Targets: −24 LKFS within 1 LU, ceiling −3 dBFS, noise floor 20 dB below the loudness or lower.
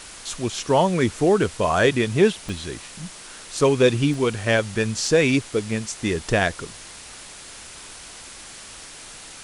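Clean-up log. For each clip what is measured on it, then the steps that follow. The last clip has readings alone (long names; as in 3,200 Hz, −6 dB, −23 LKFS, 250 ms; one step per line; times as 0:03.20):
number of dropouts 4; longest dropout 1.7 ms; background noise floor −41 dBFS; target noise floor −42 dBFS; integrated loudness −21.5 LKFS; sample peak −4.5 dBFS; target loudness −24.0 LKFS
→ repair the gap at 0:02.49/0:04.14/0:05.07/0:05.71, 1.7 ms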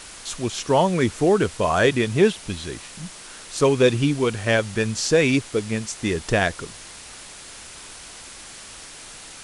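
number of dropouts 0; background noise floor −41 dBFS; target noise floor −42 dBFS
→ broadband denoise 6 dB, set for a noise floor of −41 dBFS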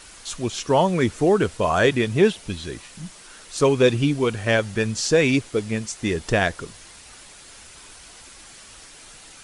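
background noise floor −45 dBFS; integrated loudness −21.5 LKFS; sample peak −5.0 dBFS; target loudness −24.0 LKFS
→ level −2.5 dB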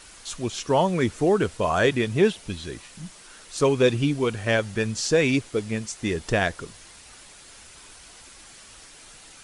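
integrated loudness −24.0 LKFS; sample peak −7.5 dBFS; background noise floor −48 dBFS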